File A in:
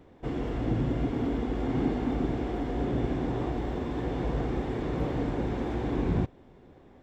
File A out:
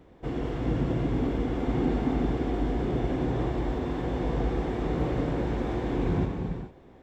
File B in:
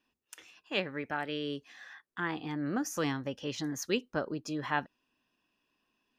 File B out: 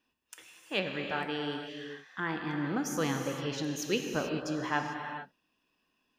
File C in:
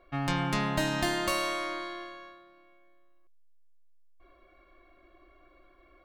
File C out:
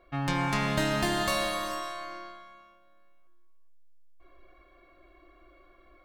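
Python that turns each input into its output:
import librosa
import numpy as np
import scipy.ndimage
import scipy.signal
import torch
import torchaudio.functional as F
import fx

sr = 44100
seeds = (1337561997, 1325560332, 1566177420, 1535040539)

y = fx.rev_gated(x, sr, seeds[0], gate_ms=470, shape='flat', drr_db=3.0)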